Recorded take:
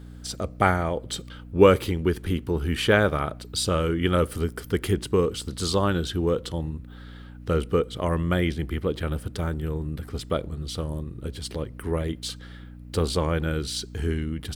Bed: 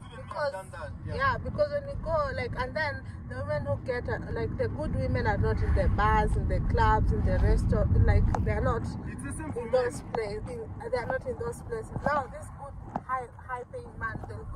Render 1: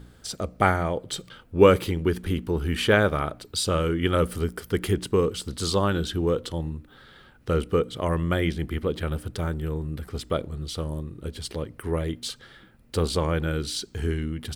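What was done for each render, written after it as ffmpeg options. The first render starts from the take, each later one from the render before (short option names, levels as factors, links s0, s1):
-af "bandreject=f=60:t=h:w=4,bandreject=f=120:t=h:w=4,bandreject=f=180:t=h:w=4,bandreject=f=240:t=h:w=4,bandreject=f=300:t=h:w=4"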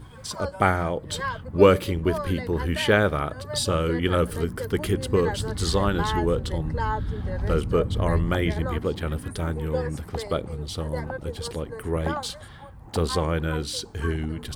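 -filter_complex "[1:a]volume=0.708[s0];[0:a][s0]amix=inputs=2:normalize=0"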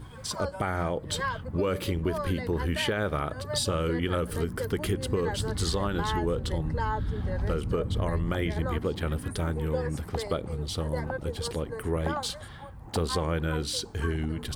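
-af "alimiter=limit=0.211:level=0:latency=1:release=106,acompressor=threshold=0.0562:ratio=3"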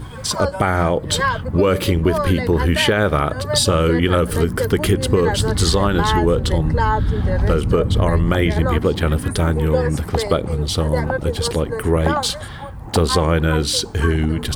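-af "volume=3.98"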